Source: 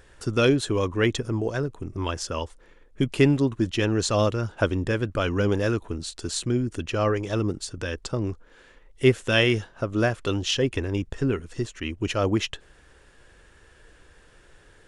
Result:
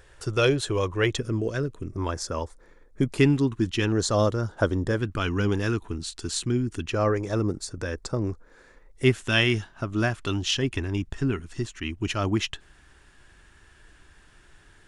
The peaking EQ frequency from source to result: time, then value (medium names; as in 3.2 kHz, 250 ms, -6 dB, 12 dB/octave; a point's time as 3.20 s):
peaking EQ -13.5 dB 0.42 oct
240 Hz
from 1.19 s 820 Hz
from 1.91 s 2.9 kHz
from 3.18 s 590 Hz
from 3.92 s 2.6 kHz
from 4.98 s 560 Hz
from 6.93 s 3 kHz
from 9.04 s 500 Hz